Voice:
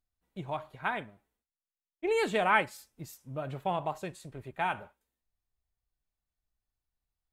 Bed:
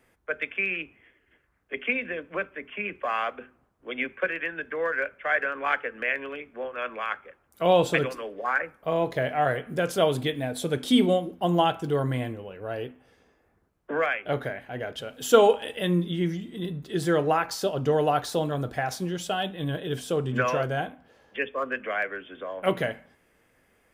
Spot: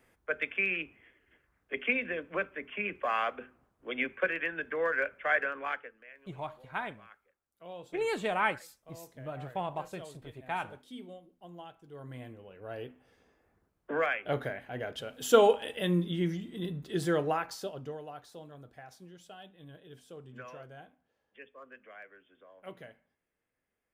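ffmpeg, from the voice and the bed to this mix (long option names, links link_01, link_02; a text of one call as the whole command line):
ffmpeg -i stem1.wav -i stem2.wav -filter_complex "[0:a]adelay=5900,volume=-3.5dB[link_01];[1:a]volume=19dB,afade=type=out:start_time=5.3:duration=0.69:silence=0.0707946,afade=type=in:start_time=11.89:duration=1.49:silence=0.0841395,afade=type=out:start_time=16.96:duration=1.05:silence=0.133352[link_02];[link_01][link_02]amix=inputs=2:normalize=0" out.wav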